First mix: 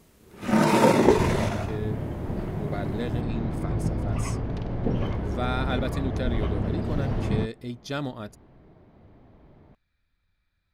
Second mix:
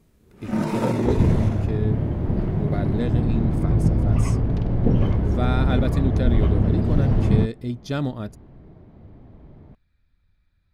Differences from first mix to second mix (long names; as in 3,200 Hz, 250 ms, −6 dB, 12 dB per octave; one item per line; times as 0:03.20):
first sound −9.5 dB
master: add low-shelf EQ 370 Hz +9.5 dB